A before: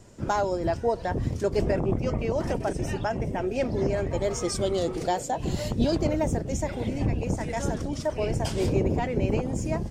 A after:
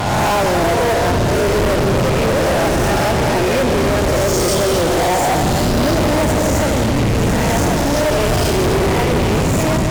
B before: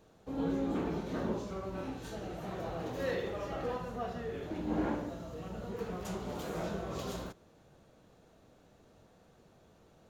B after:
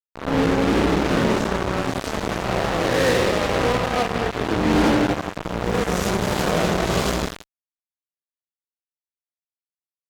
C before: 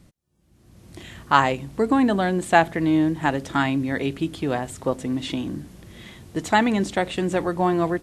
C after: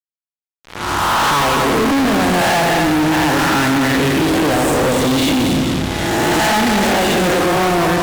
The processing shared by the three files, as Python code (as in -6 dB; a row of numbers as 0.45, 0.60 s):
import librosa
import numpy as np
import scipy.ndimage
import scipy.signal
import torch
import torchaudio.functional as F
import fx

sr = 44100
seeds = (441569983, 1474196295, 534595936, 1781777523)

p1 = fx.spec_swells(x, sr, rise_s=1.26)
p2 = fx.high_shelf(p1, sr, hz=10000.0, db=-9.5)
p3 = fx.rider(p2, sr, range_db=10, speed_s=2.0)
p4 = p2 + F.gain(torch.from_numpy(p3), -1.5).numpy()
p5 = fx.vibrato(p4, sr, rate_hz=1.6, depth_cents=30.0)
p6 = p5 + fx.echo_heads(p5, sr, ms=84, heads='all three', feedback_pct=44, wet_db=-11.5, dry=0)
y = fx.fuzz(p6, sr, gain_db=30.0, gate_db=-29.0)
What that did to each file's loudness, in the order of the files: +12.0, +16.5, +8.0 LU